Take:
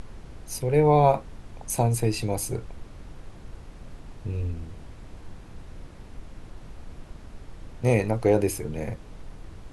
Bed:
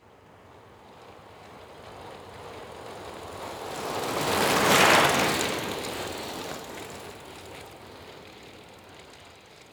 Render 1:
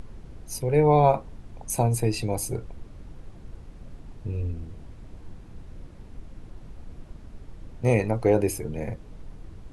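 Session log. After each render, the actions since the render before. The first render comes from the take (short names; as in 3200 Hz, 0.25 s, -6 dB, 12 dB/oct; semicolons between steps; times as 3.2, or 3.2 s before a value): denoiser 6 dB, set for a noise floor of -46 dBFS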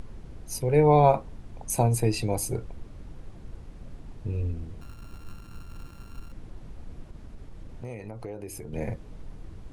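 4.81–6.32 sample sorter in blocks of 32 samples; 7.07–8.73 compressor, threshold -35 dBFS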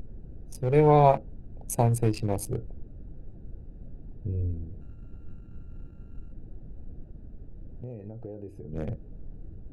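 Wiener smoothing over 41 samples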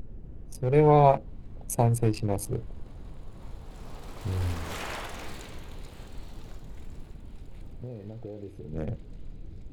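add bed -18.5 dB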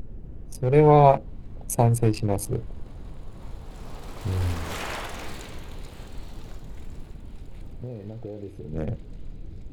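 gain +3.5 dB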